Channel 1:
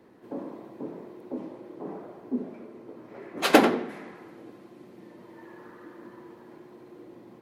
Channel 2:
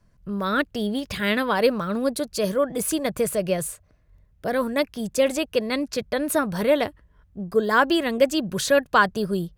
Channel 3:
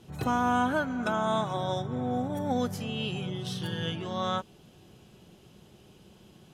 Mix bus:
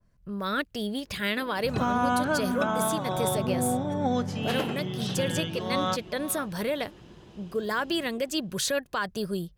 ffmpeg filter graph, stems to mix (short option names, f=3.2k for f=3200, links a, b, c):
-filter_complex "[0:a]adelay=1050,volume=-16.5dB,asplit=2[a][b];[b]volume=-18.5dB[c];[1:a]alimiter=limit=-14dB:level=0:latency=1:release=122,adynamicequalizer=threshold=0.0158:dfrequency=1800:dqfactor=0.7:tfrequency=1800:tqfactor=0.7:attack=5:release=100:ratio=0.375:range=2.5:mode=boostabove:tftype=highshelf,volume=-12.5dB[d];[2:a]lowpass=6.2k,adelay=1550,volume=-3.5dB,asplit=2[e][f];[f]volume=-14.5dB[g];[c][g]amix=inputs=2:normalize=0,aecho=0:1:497:1[h];[a][d][e][h]amix=inputs=4:normalize=0,acontrast=71,alimiter=limit=-15.5dB:level=0:latency=1:release=472"